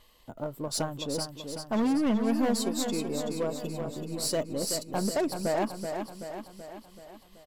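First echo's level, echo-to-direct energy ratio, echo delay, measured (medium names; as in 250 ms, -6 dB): -6.5 dB, -5.0 dB, 380 ms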